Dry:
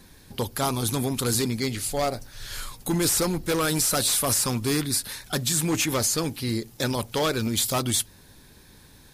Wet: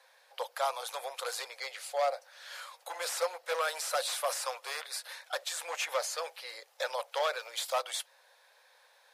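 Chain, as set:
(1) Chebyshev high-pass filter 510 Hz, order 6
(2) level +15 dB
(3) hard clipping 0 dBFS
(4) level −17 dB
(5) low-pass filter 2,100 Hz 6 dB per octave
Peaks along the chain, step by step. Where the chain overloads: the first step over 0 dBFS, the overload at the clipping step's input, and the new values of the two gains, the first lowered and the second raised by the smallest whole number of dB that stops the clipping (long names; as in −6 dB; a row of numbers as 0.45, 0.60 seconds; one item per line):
−11.5, +3.5, 0.0, −17.0, −19.0 dBFS
step 2, 3.5 dB
step 2 +11 dB, step 4 −13 dB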